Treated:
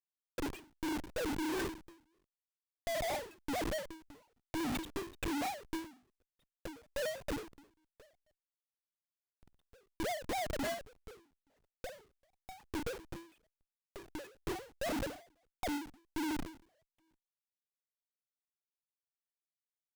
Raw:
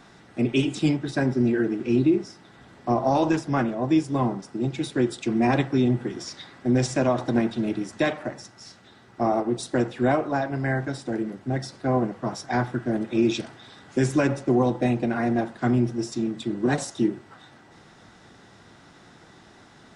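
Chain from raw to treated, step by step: formants replaced by sine waves; reverb removal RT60 1.5 s; static phaser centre 360 Hz, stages 6; in parallel at -7 dB: word length cut 8-bit, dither triangular; on the sum: waveshaping leveller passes 2; reverse; compression 12:1, threshold -29 dBFS, peak gain reduction 17.5 dB; reverse; hum notches 50/100/150/200/250/300/350/400/450 Hz; time-frequency box 8.67–9.62 s, 280–1700 Hz -26 dB; Schmitt trigger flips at -39 dBFS; endings held to a fixed fall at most 130 dB/s

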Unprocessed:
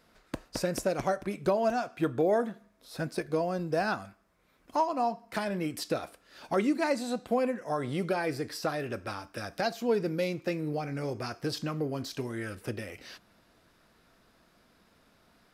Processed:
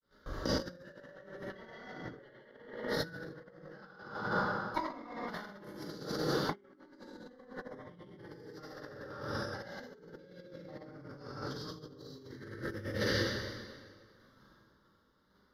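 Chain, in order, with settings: time reversed locally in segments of 47 ms; peaking EQ 620 Hz +14.5 dB 0.88 oct; saturation -15 dBFS, distortion -12 dB; granulator 100 ms, grains 20 per s, pitch spread up and down by 0 st; gate -55 dBFS, range -25 dB; static phaser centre 2.5 kHz, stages 6; plate-style reverb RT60 1.8 s, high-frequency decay 0.85×, DRR -9.5 dB; compressor with a negative ratio -36 dBFS, ratio -0.5; trim -4 dB

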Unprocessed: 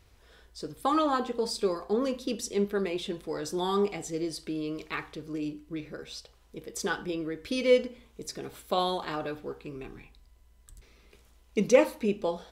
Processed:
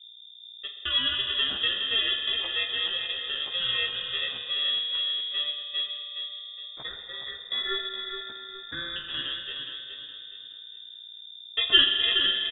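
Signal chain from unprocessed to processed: bit-reversed sample order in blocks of 32 samples; 6.61–8.96 s: elliptic band-stop 290–1400 Hz, stop band 40 dB; gate -36 dBFS, range -44 dB; hum 60 Hz, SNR 19 dB; frequency shift -41 Hz; doubling 15 ms -4 dB; feedback delay 418 ms, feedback 35%, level -7 dB; spring tank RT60 2.8 s, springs 41 ms, chirp 45 ms, DRR 5 dB; frequency inversion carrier 3.6 kHz

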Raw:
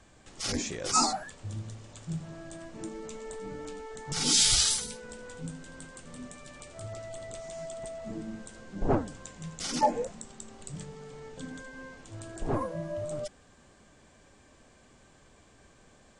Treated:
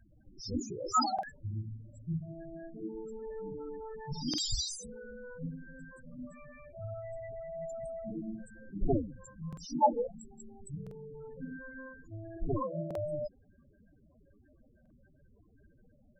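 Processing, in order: loudest bins only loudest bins 8; buffer glitch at 1.14/4.29/9.48/10.82/12.86/14.81 s, samples 2048, times 1

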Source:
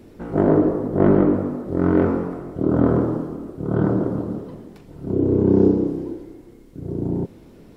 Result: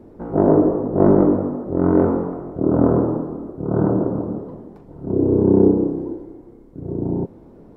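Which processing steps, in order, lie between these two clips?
FFT filter 130 Hz 0 dB, 900 Hz +4 dB, 2.7 kHz -14 dB

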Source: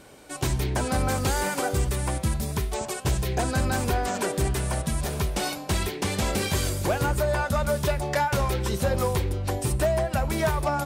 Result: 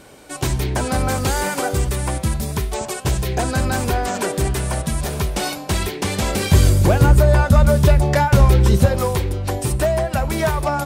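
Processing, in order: 6.51–8.86 s: bass shelf 280 Hz +11.5 dB; trim +5 dB

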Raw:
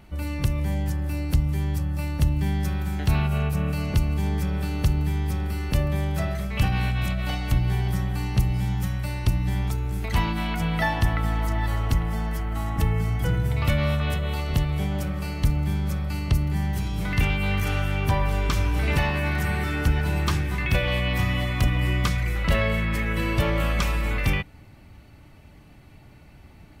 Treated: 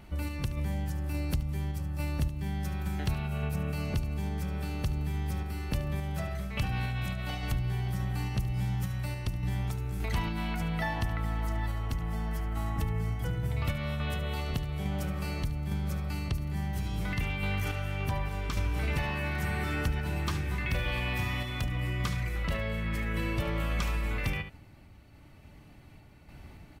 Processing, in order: 20.62–21.64 s: flutter echo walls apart 7.8 m, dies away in 0.48 s; random-step tremolo 3.5 Hz, depth 55%; delay 73 ms -12.5 dB; compression 2.5:1, threshold -30 dBFS, peak gain reduction 10.5 dB

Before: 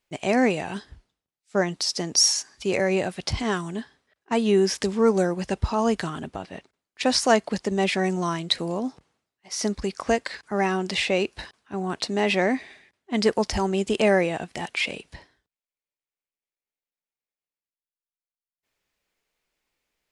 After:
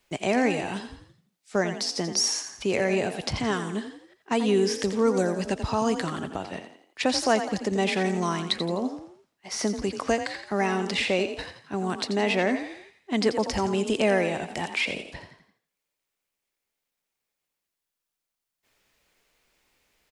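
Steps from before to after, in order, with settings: frequency-shifting echo 85 ms, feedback 38%, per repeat +34 Hz, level -10 dB; three bands compressed up and down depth 40%; trim -2 dB

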